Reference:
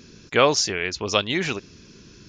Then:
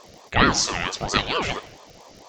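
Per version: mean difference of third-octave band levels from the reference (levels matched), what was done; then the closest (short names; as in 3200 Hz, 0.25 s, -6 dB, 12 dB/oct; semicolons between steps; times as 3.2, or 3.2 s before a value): 8.0 dB: plate-style reverb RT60 0.87 s, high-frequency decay 0.9×, DRR 11.5 dB; crackle 100/s -40 dBFS; ring modulator with a swept carrier 540 Hz, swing 55%, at 4.4 Hz; gain +2.5 dB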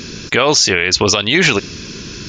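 5.5 dB: bell 3300 Hz +4.5 dB 2.6 oct; compressor 5:1, threshold -21 dBFS, peak gain reduction 11 dB; maximiser +17.5 dB; gain -1 dB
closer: second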